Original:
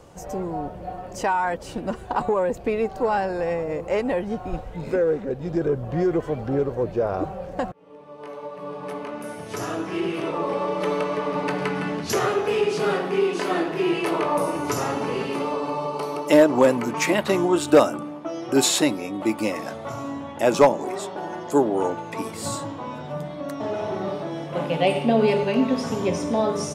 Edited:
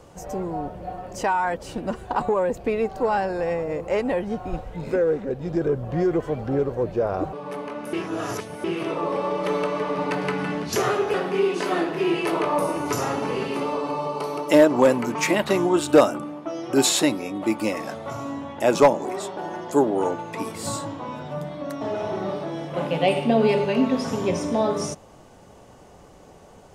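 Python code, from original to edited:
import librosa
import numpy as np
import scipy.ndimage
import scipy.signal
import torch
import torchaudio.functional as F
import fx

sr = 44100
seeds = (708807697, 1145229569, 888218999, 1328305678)

y = fx.edit(x, sr, fx.cut(start_s=7.33, length_s=1.37),
    fx.reverse_span(start_s=9.3, length_s=0.71),
    fx.cut(start_s=12.51, length_s=0.42), tone=tone)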